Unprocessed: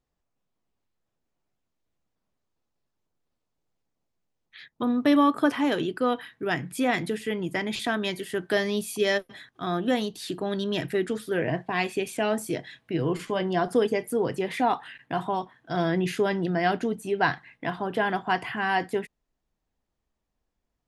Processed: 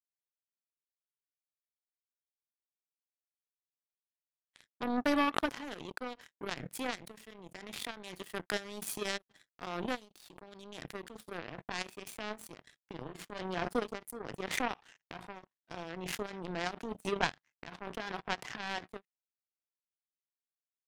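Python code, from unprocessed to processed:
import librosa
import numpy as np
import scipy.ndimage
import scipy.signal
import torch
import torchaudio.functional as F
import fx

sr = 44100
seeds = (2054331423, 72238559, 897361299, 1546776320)

y = fx.power_curve(x, sr, exponent=3.0)
y = fx.pre_swell(y, sr, db_per_s=32.0)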